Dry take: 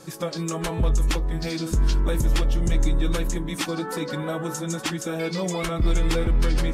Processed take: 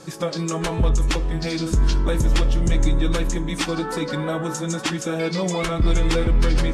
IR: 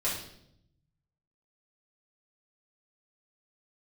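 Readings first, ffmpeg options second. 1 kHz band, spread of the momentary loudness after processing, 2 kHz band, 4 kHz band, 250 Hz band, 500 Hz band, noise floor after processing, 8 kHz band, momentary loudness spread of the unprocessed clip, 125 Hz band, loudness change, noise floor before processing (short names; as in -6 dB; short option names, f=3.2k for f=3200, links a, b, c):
+3.5 dB, 5 LU, +3.5 dB, +3.5 dB, +3.5 dB, +3.5 dB, -31 dBFS, +2.0 dB, 5 LU, +3.0 dB, +3.0 dB, -34 dBFS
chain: -filter_complex "[0:a]lowpass=8.9k,asplit=2[a][b];[1:a]atrim=start_sample=2205,asetrate=30870,aresample=44100[c];[b][c]afir=irnorm=-1:irlink=0,volume=-25.5dB[d];[a][d]amix=inputs=2:normalize=0,volume=3dB"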